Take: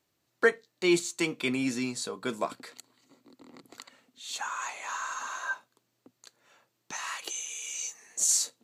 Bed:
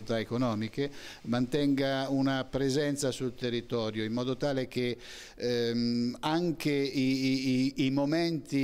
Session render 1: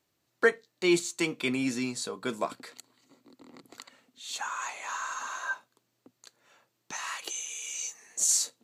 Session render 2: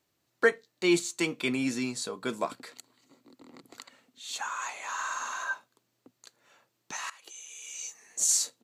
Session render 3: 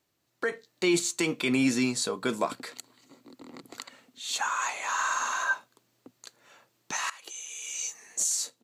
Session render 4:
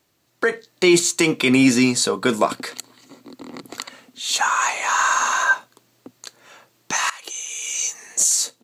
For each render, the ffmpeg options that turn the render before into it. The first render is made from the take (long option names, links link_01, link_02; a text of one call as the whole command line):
ffmpeg -i in.wav -af anull out.wav
ffmpeg -i in.wav -filter_complex "[0:a]asplit=3[link_01][link_02][link_03];[link_01]afade=type=out:start_time=4.97:duration=0.02[link_04];[link_02]asplit=2[link_05][link_06];[link_06]adelay=50,volume=-3dB[link_07];[link_05][link_07]amix=inputs=2:normalize=0,afade=type=in:start_time=4.97:duration=0.02,afade=type=out:start_time=5.43:duration=0.02[link_08];[link_03]afade=type=in:start_time=5.43:duration=0.02[link_09];[link_04][link_08][link_09]amix=inputs=3:normalize=0,asplit=2[link_10][link_11];[link_10]atrim=end=7.1,asetpts=PTS-STARTPTS,afade=type=out:start_time=7.096:duration=0.004:curve=hsin:silence=0.112202[link_12];[link_11]atrim=start=7.1,asetpts=PTS-STARTPTS,afade=type=in:duration=1.17:silence=0.112202[link_13];[link_12][link_13]concat=n=2:v=0:a=1" out.wav
ffmpeg -i in.wav -af "alimiter=limit=-21dB:level=0:latency=1:release=55,dynaudnorm=framelen=100:gausssize=11:maxgain=5.5dB" out.wav
ffmpeg -i in.wav -af "volume=10dB" out.wav